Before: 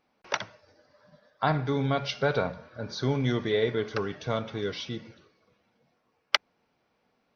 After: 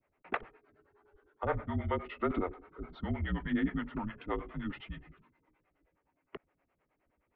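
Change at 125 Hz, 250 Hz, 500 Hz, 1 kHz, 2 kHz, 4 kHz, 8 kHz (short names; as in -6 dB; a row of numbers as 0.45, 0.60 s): -8.5 dB, -3.5 dB, -10.5 dB, -7.0 dB, -9.0 dB, -20.0 dB, n/a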